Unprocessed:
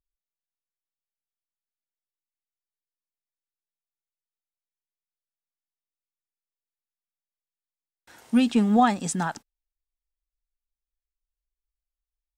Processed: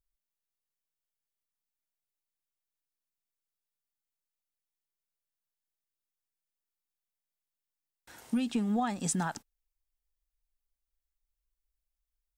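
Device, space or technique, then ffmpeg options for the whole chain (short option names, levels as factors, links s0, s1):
ASMR close-microphone chain: -af "lowshelf=f=110:g=6,acompressor=threshold=0.0501:ratio=5,highshelf=f=8800:g=6.5,volume=0.794"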